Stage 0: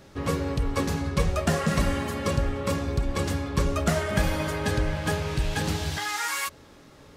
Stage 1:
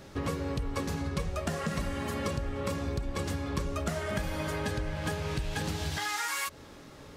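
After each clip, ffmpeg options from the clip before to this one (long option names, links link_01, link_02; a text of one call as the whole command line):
ffmpeg -i in.wav -af "acompressor=threshold=-31dB:ratio=6,volume=1.5dB" out.wav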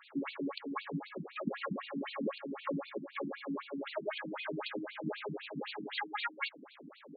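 ffmpeg -i in.wav -af "afftfilt=real='re*between(b*sr/1024,220*pow(3300/220,0.5+0.5*sin(2*PI*3.9*pts/sr))/1.41,220*pow(3300/220,0.5+0.5*sin(2*PI*3.9*pts/sr))*1.41)':imag='im*between(b*sr/1024,220*pow(3300/220,0.5+0.5*sin(2*PI*3.9*pts/sr))/1.41,220*pow(3300/220,0.5+0.5*sin(2*PI*3.9*pts/sr))*1.41)':win_size=1024:overlap=0.75,volume=3dB" out.wav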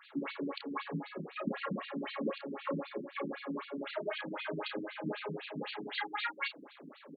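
ffmpeg -i in.wav -filter_complex "[0:a]asplit=2[link_01][link_02];[link_02]adelay=31,volume=-6.5dB[link_03];[link_01][link_03]amix=inputs=2:normalize=0" out.wav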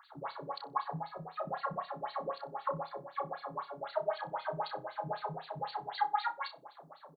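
ffmpeg -i in.wav -filter_complex "[0:a]firequalizer=gain_entry='entry(140,0);entry(220,-26);entry(740,6);entry(2500,-23);entry(4300,-3)':delay=0.05:min_phase=1,asplit=2[link_01][link_02];[link_02]adelay=62,lowpass=frequency=2600:poles=1,volume=-17.5dB,asplit=2[link_03][link_04];[link_04]adelay=62,lowpass=frequency=2600:poles=1,volume=0.23[link_05];[link_01][link_03][link_05]amix=inputs=3:normalize=0,volume=5.5dB" out.wav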